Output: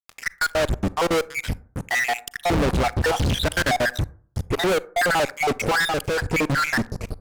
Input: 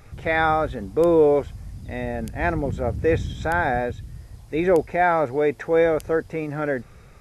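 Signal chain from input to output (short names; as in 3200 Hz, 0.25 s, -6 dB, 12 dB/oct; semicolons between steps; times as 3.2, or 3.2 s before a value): random spectral dropouts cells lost 67%; fuzz box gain 44 dB, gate -52 dBFS; 4.67–5.2 notch 5200 Hz, Q 5.2; 5.85–6.32 compressor 2.5:1, threshold -18 dBFS, peak gain reduction 3 dB; reverb RT60 0.50 s, pre-delay 32 ms, DRR 19.5 dB; upward compressor, threshold -32 dBFS; 1.75–2.21 low shelf 140 Hz -10 dB; Doppler distortion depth 0.27 ms; gain -5.5 dB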